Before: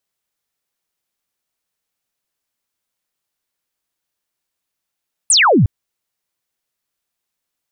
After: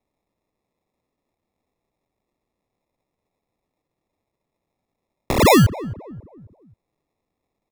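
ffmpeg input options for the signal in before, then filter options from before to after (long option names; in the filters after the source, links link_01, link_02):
-f lavfi -i "aevalsrc='0.398*clip(t/0.002,0,1)*clip((0.36-t)/0.002,0,1)*sin(2*PI*9800*0.36/log(85/9800)*(exp(log(85/9800)*t/0.36)-1))':duration=0.36:sample_rate=44100"
-filter_complex "[0:a]acrossover=split=120|470|2400[link_01][link_02][link_03][link_04];[link_04]acompressor=threshold=-22dB:ratio=6[link_05];[link_01][link_02][link_03][link_05]amix=inputs=4:normalize=0,acrusher=samples=29:mix=1:aa=0.000001,asplit=2[link_06][link_07];[link_07]adelay=268,lowpass=frequency=800:poles=1,volume=-16dB,asplit=2[link_08][link_09];[link_09]adelay=268,lowpass=frequency=800:poles=1,volume=0.43,asplit=2[link_10][link_11];[link_11]adelay=268,lowpass=frequency=800:poles=1,volume=0.43,asplit=2[link_12][link_13];[link_13]adelay=268,lowpass=frequency=800:poles=1,volume=0.43[link_14];[link_06][link_08][link_10][link_12][link_14]amix=inputs=5:normalize=0"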